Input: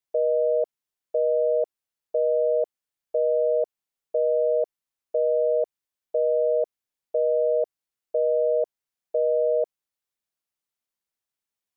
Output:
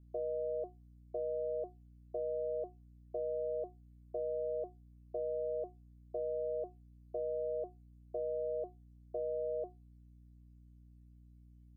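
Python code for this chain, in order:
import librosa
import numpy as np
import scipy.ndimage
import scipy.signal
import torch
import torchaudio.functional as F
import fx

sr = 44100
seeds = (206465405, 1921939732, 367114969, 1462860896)

y = fx.stiff_resonator(x, sr, f0_hz=360.0, decay_s=0.2, stiffness=0.002)
y = fx.add_hum(y, sr, base_hz=60, snr_db=24)
y = fx.low_shelf(y, sr, hz=480.0, db=10.5)
y = y * librosa.db_to_amplitude(5.0)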